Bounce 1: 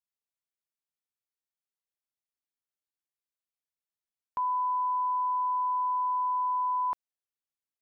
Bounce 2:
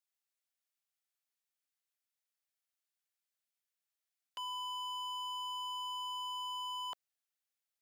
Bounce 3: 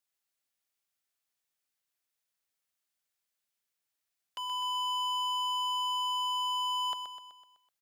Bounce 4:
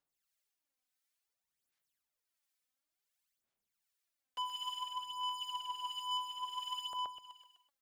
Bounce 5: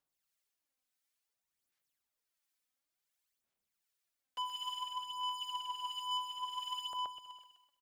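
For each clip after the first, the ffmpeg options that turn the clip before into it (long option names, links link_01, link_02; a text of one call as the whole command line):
ffmpeg -i in.wav -af "highpass=frequency=640:width=0.5412,highpass=frequency=640:width=1.3066,equalizer=frequency=980:width=2.8:gain=-8,aeval=exprs='0.0119*(abs(mod(val(0)/0.0119+3,4)-2)-1)':channel_layout=same,volume=3dB" out.wav
ffmpeg -i in.wav -af "aecho=1:1:126|252|378|504|630|756:0.355|0.192|0.103|0.0559|0.0302|0.0163,volume=4dB" out.wav
ffmpeg -i in.wav -filter_complex "[0:a]alimiter=level_in=10dB:limit=-24dB:level=0:latency=1:release=19,volume=-10dB,aphaser=in_gain=1:out_gain=1:delay=4:decay=0.65:speed=0.57:type=sinusoidal,acrossover=split=1200[link_01][link_02];[link_01]aeval=exprs='val(0)*(1-0.5/2+0.5/2*cos(2*PI*1.4*n/s))':channel_layout=same[link_03];[link_02]aeval=exprs='val(0)*(1-0.5/2-0.5/2*cos(2*PI*1.4*n/s))':channel_layout=same[link_04];[link_03][link_04]amix=inputs=2:normalize=0,volume=-2.5dB" out.wav
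ffmpeg -i in.wav -af "aecho=1:1:329:0.0891" out.wav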